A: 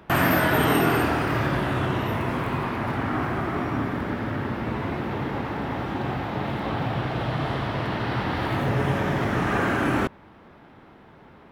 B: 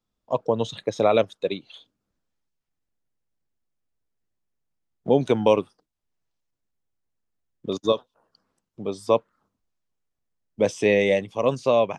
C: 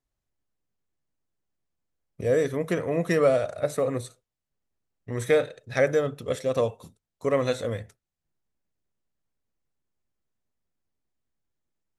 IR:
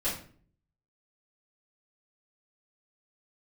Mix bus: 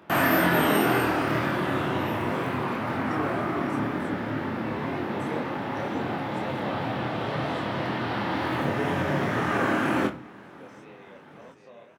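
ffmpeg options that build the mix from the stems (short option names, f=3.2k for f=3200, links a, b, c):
-filter_complex "[0:a]volume=0.5dB,asplit=3[a][b][c];[b]volume=-14dB[d];[c]volume=-23.5dB[e];[1:a]acompressor=threshold=-28dB:ratio=2.5,volume=-19dB,asplit=2[f][g];[g]volume=-7dB[h];[2:a]volume=-12.5dB[i];[3:a]atrim=start_sample=2205[j];[d][j]afir=irnorm=-1:irlink=0[k];[e][h]amix=inputs=2:normalize=0,aecho=0:1:726|1452|2178|2904|3630|4356|5082|5808:1|0.55|0.303|0.166|0.0915|0.0503|0.0277|0.0152[l];[a][f][i][k][l]amix=inputs=5:normalize=0,highpass=140,flanger=delay=22.5:depth=7:speed=2"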